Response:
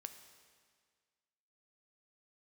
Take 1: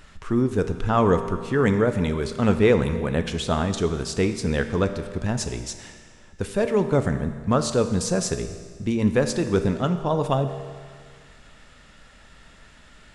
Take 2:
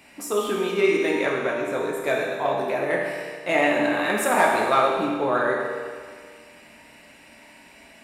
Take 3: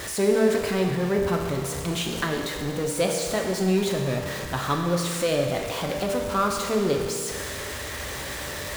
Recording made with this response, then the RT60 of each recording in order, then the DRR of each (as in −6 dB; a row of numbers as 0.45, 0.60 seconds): 1; 1.8, 1.8, 1.8 seconds; 8.0, −3.0, 1.5 decibels